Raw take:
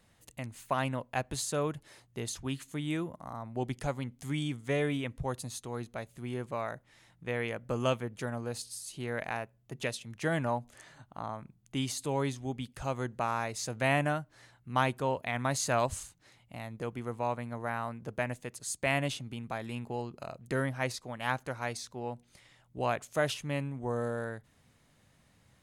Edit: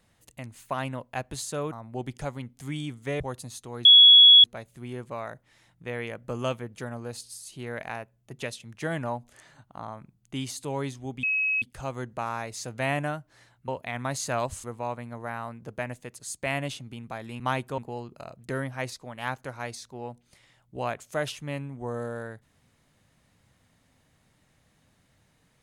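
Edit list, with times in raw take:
0:01.72–0:03.34: remove
0:04.82–0:05.20: remove
0:05.85: insert tone 3,360 Hz −9.5 dBFS 0.59 s
0:12.64: insert tone 2,560 Hz −22.5 dBFS 0.39 s
0:14.70–0:15.08: move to 0:19.80
0:16.04–0:17.04: remove

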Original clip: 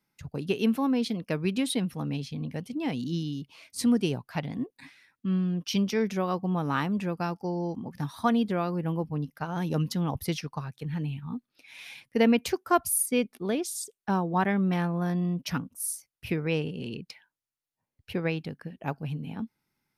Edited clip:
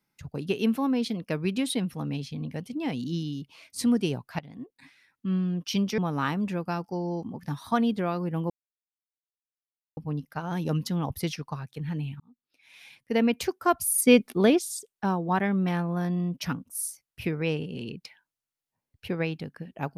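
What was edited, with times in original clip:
0:04.39–0:05.33: fade in, from −14 dB
0:05.98–0:06.50: remove
0:09.02: splice in silence 1.47 s
0:11.25–0:12.51: fade in
0:13.03–0:13.64: clip gain +8.5 dB

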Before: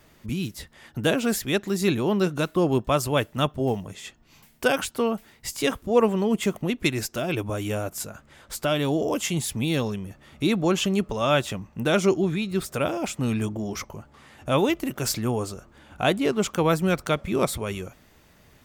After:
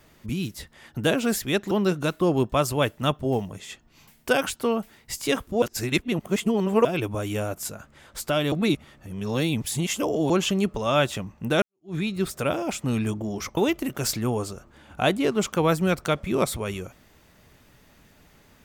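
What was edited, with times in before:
0:01.71–0:02.06: remove
0:05.97–0:07.20: reverse
0:08.87–0:10.65: reverse
0:11.97–0:12.30: fade in exponential
0:13.92–0:14.58: remove

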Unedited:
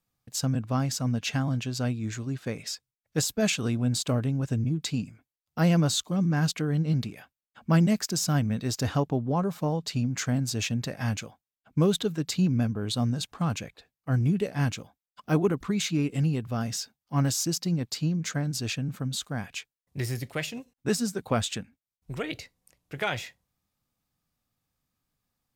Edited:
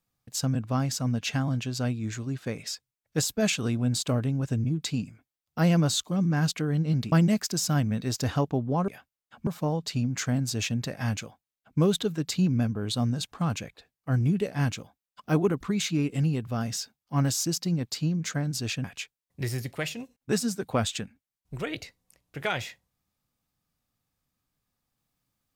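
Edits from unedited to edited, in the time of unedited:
0:07.12–0:07.71: move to 0:09.47
0:18.84–0:19.41: remove

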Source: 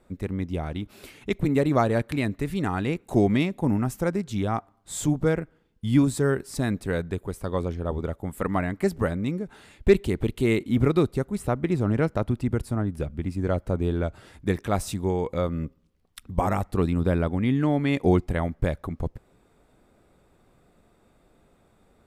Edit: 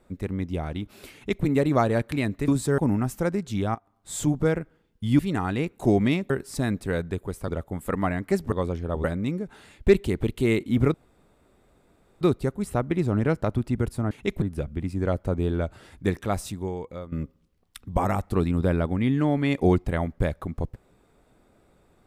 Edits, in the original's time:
0:01.14–0:01.45: duplicate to 0:12.84
0:02.48–0:03.59: swap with 0:06.00–0:06.30
0:04.56–0:05.04: fade in equal-power, from −19 dB
0:07.48–0:08.00: move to 0:09.04
0:10.94: splice in room tone 1.27 s
0:14.52–0:15.54: fade out, to −15 dB

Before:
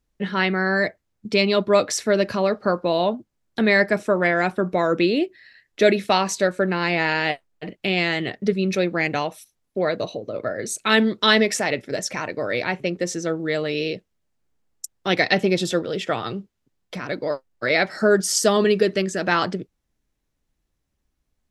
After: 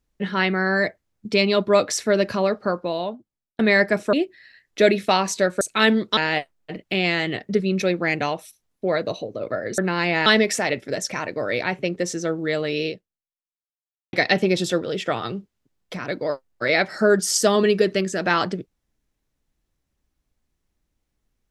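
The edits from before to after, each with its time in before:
0:02.43–0:03.59: fade out
0:04.13–0:05.14: remove
0:06.62–0:07.10: swap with 0:10.71–0:11.27
0:13.89–0:15.14: fade out exponential

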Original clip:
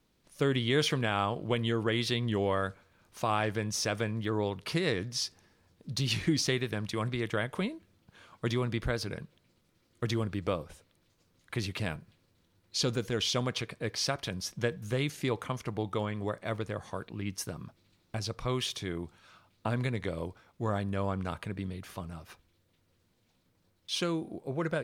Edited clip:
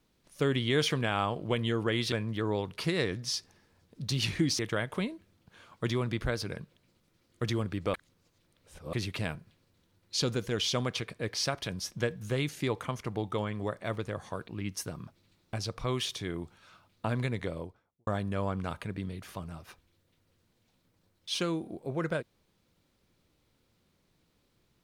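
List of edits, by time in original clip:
0:02.12–0:04.00: remove
0:06.47–0:07.20: remove
0:10.55–0:11.54: reverse
0:19.98–0:20.68: fade out and dull

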